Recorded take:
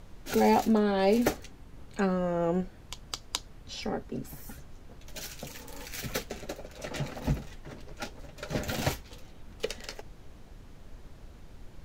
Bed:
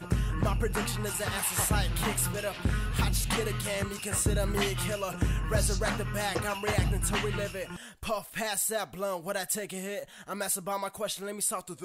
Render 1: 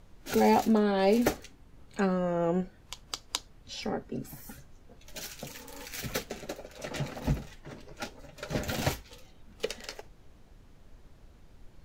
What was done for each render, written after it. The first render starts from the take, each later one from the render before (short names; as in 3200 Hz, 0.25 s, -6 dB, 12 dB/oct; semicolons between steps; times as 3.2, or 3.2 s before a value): noise print and reduce 6 dB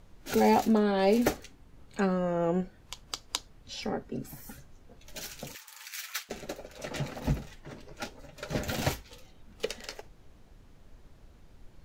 5.55–6.29 HPF 1100 Hz 24 dB/oct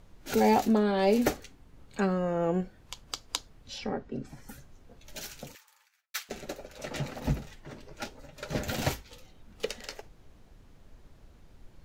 3.78–4.49 air absorption 93 m; 5.19–6.14 studio fade out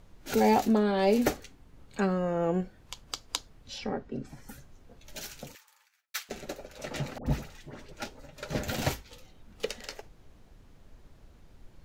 7.18–7.92 dispersion highs, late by 83 ms, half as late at 920 Hz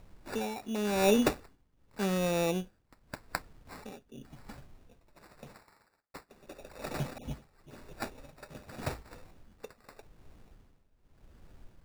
tremolo 0.87 Hz, depth 87%; sample-and-hold 14×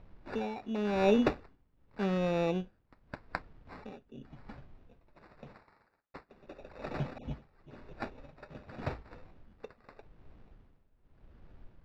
air absorption 240 m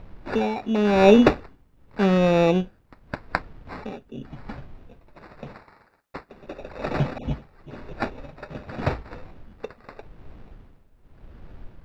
gain +12 dB